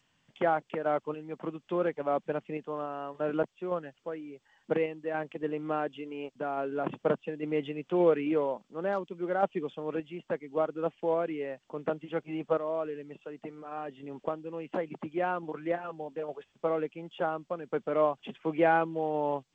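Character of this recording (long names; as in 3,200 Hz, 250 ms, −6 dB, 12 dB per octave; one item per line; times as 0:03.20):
sample-and-hold tremolo 3.5 Hz, depth 70%
G.722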